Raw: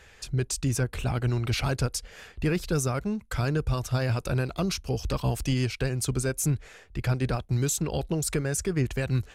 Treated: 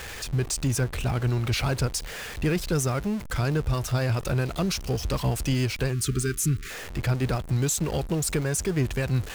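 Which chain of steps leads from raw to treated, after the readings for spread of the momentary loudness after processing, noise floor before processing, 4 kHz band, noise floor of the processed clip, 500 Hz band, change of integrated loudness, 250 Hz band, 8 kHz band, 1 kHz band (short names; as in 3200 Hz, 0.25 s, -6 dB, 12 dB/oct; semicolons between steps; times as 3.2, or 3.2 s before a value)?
4 LU, -53 dBFS, +2.5 dB, -38 dBFS, +1.0 dB, +1.5 dB, +1.5 dB, +2.0 dB, +1.5 dB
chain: zero-crossing step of -33 dBFS; spectral delete 5.93–6.71, 450–1100 Hz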